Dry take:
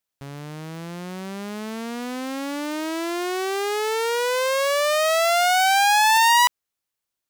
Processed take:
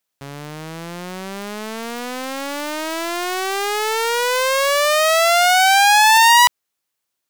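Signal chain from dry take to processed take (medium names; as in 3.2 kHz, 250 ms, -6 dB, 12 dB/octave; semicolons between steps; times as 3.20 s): high-pass 140 Hz 6 dB/octave; loudspeaker Doppler distortion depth 0.72 ms; trim +6 dB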